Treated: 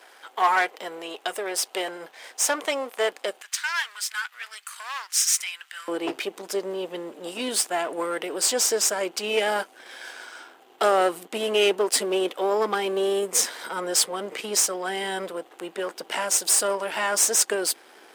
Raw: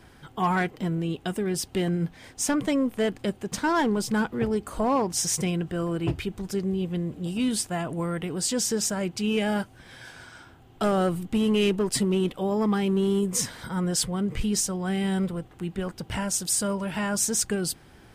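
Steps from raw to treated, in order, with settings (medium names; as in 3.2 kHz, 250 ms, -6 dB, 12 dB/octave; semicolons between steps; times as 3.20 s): partial rectifier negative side -7 dB; high-pass 490 Hz 24 dB/octave, from 3.42 s 1.5 kHz, from 5.88 s 370 Hz; trim +8 dB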